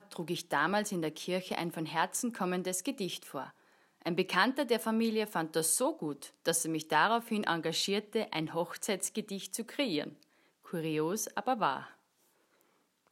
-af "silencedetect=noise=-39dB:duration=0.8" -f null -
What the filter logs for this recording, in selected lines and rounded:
silence_start: 11.84
silence_end: 13.12 | silence_duration: 1.28